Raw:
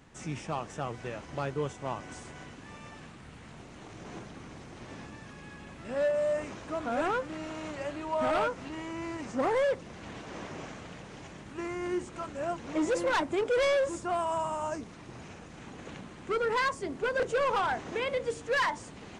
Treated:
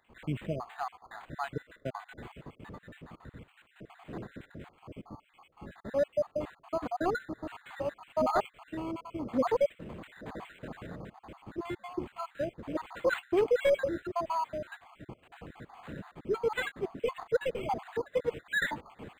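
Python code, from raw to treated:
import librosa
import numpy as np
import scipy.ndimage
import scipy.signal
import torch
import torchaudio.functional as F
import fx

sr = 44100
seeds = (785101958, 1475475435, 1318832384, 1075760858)

y = fx.spec_dropout(x, sr, seeds[0], share_pct=68)
y = fx.high_shelf(y, sr, hz=4800.0, db=-10.5, at=(4.79, 7.34))
y = np.interp(np.arange(len(y)), np.arange(len(y))[::8], y[::8])
y = y * 10.0 ** (3.5 / 20.0)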